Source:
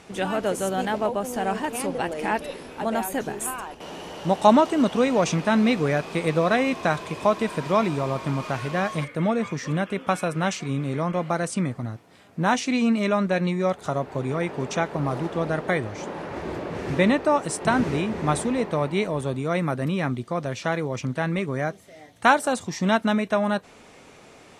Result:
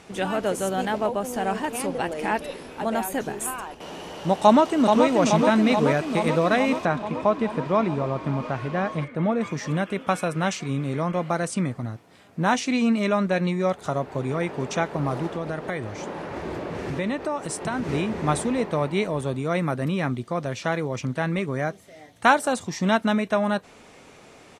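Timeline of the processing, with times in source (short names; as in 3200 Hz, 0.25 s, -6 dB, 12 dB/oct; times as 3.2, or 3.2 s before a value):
4.42–5.06 echo throw 0.43 s, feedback 75%, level -4.5 dB
6.85–9.41 LPF 1800 Hz 6 dB/oct
15.29–17.89 compressor 2.5:1, threshold -26 dBFS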